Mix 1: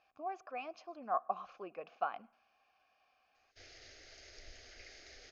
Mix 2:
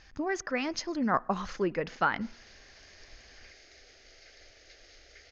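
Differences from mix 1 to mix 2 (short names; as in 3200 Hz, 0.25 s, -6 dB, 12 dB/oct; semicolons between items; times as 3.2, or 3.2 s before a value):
speech: remove vowel filter a; background: entry -1.35 s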